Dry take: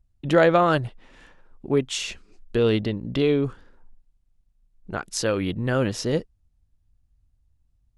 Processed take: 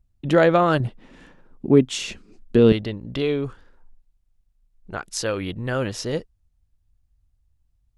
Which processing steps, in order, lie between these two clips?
parametric band 220 Hz +2.5 dB 1.9 octaves, from 0:00.80 +10.5 dB, from 0:02.72 −4 dB

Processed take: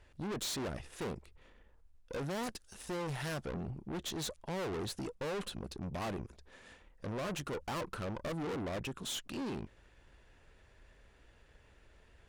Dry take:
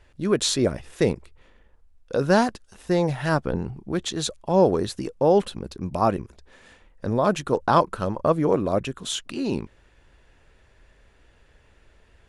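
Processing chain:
0:02.43–0:03.48: high-shelf EQ 3,600 Hz +8 dB
tube saturation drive 33 dB, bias 0.5
level −3 dB

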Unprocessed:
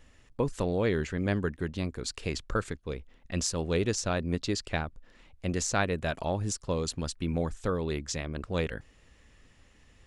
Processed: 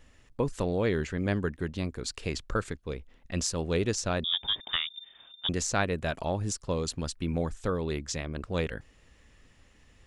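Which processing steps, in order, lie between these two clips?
0:04.24–0:05.49: voice inversion scrambler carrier 3,600 Hz

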